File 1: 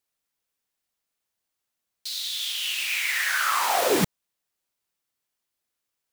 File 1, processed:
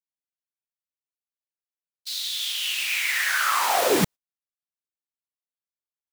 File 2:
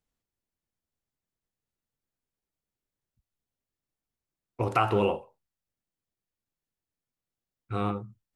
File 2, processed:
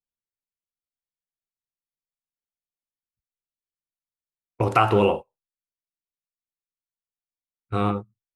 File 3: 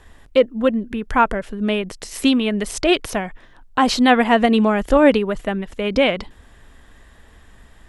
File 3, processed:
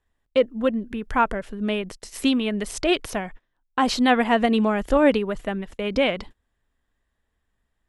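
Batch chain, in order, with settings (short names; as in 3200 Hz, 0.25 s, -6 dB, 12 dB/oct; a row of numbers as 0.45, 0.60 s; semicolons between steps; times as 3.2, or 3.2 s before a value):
gate -34 dBFS, range -23 dB; match loudness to -23 LUFS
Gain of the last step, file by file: +1.0, +6.0, -4.5 dB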